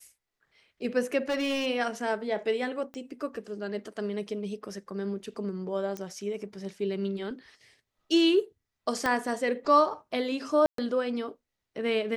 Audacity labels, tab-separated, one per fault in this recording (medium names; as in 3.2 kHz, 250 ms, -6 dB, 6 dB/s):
1.290000	1.670000	clipped -25 dBFS
2.940000	2.940000	pop -28 dBFS
5.970000	5.970000	pop -22 dBFS
9.060000	9.060000	pop -14 dBFS
10.660000	10.780000	dropout 123 ms